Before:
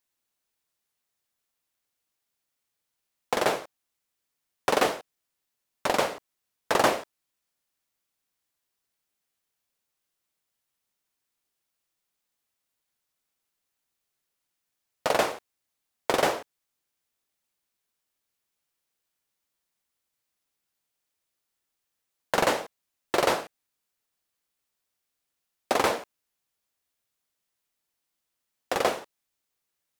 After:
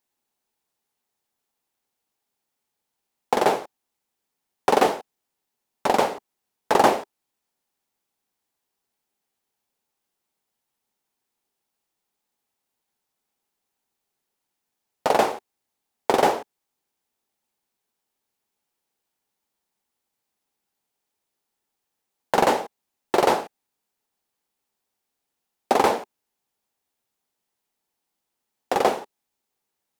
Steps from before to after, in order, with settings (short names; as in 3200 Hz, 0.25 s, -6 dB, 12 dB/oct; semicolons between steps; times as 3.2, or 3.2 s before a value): bell 830 Hz +9 dB 0.44 oct; small resonant body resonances 230/390 Hz, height 7 dB, ringing for 25 ms